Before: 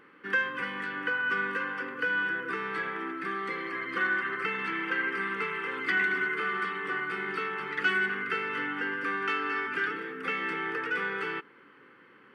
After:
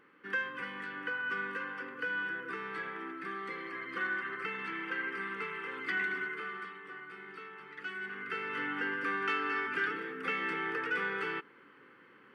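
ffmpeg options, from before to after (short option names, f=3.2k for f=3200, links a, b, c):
-af "volume=5.5dB,afade=t=out:st=6.09:d=0.74:silence=0.398107,afade=t=in:st=7.96:d=0.78:silence=0.251189"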